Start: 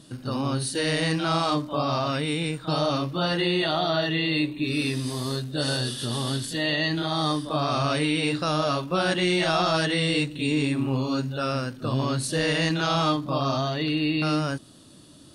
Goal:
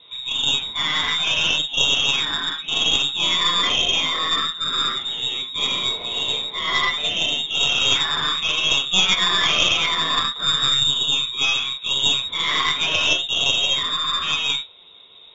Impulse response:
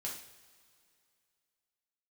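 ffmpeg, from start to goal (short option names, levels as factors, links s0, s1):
-filter_complex "[0:a]lowpass=f=3300:t=q:w=0.5098,lowpass=f=3300:t=q:w=0.6013,lowpass=f=3300:t=q:w=0.9,lowpass=f=3300:t=q:w=2.563,afreqshift=-3900[s0];[1:a]atrim=start_sample=2205,atrim=end_sample=4410[s1];[s0][s1]afir=irnorm=-1:irlink=0,aeval=exprs='0.251*(cos(1*acos(clip(val(0)/0.251,-1,1)))-cos(1*PI/2))+0.1*(cos(2*acos(clip(val(0)/0.251,-1,1)))-cos(2*PI/2))':c=same,volume=2"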